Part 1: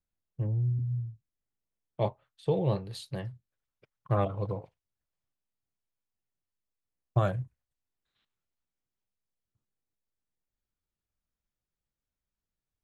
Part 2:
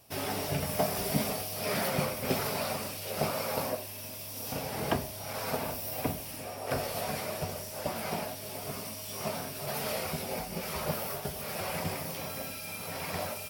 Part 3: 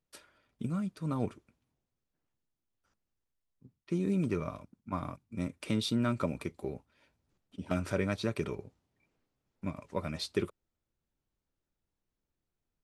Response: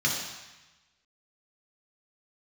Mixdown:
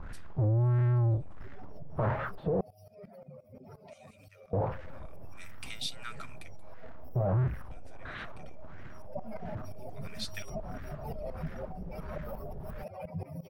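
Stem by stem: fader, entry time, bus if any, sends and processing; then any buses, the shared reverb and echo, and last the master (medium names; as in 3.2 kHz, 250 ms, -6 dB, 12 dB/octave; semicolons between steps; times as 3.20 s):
-5.0 dB, 0.00 s, muted 2.61–4.53 s, no send, power-law waveshaper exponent 0.35; LFO low-pass sine 1.5 Hz 590–1800 Hz
8.88 s -16.5 dB -> 9.16 s -4 dB, 1.30 s, no send, spectral contrast enhancement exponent 2.6; tremolo saw up 5.7 Hz, depth 90%
0.0 dB, 0.00 s, no send, high-pass 1.5 kHz 24 dB/octave; auto duck -19 dB, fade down 0.95 s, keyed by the first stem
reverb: none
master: bass shelf 240 Hz +6.5 dB; peak limiter -23 dBFS, peak gain reduction 12.5 dB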